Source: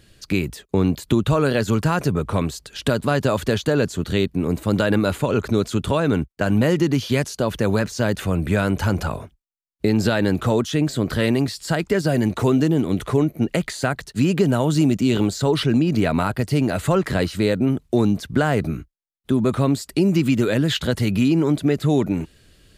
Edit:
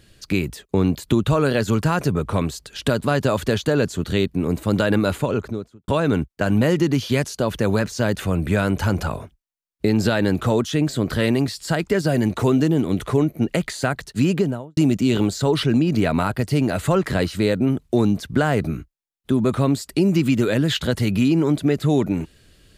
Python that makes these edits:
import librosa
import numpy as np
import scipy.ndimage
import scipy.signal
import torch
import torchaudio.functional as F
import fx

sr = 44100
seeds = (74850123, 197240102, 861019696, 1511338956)

y = fx.studio_fade_out(x, sr, start_s=5.12, length_s=0.76)
y = fx.studio_fade_out(y, sr, start_s=14.27, length_s=0.5)